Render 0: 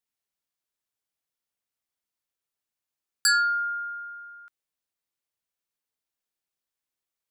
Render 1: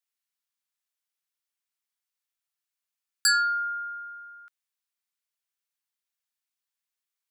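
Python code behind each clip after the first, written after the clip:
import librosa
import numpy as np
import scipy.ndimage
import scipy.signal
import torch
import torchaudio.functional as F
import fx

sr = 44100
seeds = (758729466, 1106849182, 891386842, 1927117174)

y = scipy.signal.sosfilt(scipy.signal.butter(2, 1100.0, 'highpass', fs=sr, output='sos'), x)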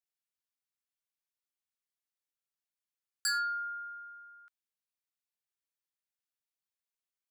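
y = np.clip(x, -10.0 ** (-18.5 / 20.0), 10.0 ** (-18.5 / 20.0))
y = y * librosa.db_to_amplitude(-8.0)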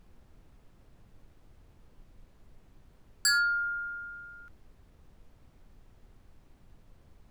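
y = fx.dmg_noise_colour(x, sr, seeds[0], colour='brown', level_db=-61.0)
y = y * librosa.db_to_amplitude(6.0)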